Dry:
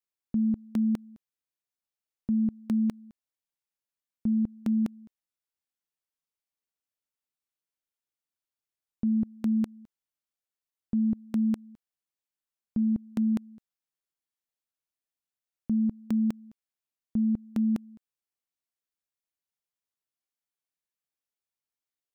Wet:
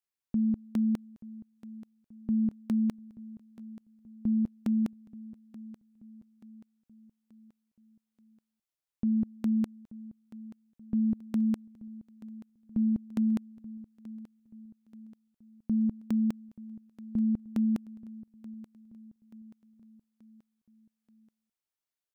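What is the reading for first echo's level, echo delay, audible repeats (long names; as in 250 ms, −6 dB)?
−18.0 dB, 881 ms, 3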